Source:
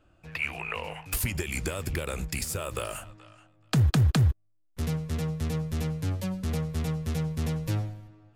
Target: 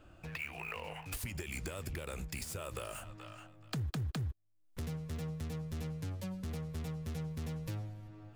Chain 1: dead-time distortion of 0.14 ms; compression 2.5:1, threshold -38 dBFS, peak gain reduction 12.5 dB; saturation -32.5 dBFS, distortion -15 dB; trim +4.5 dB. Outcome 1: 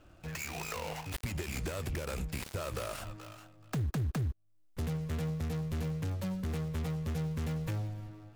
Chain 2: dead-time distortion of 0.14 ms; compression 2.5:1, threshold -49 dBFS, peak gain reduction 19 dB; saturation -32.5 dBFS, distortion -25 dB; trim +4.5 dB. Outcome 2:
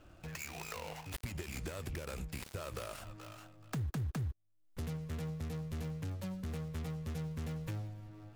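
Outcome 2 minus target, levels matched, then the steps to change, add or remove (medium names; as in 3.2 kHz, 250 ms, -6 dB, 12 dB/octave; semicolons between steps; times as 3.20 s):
dead-time distortion: distortion +9 dB
change: dead-time distortion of 0.025 ms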